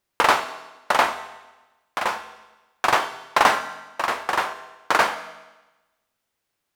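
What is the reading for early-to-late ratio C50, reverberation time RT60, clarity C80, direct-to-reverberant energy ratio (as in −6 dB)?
11.5 dB, 1.1 s, 13.5 dB, 8.5 dB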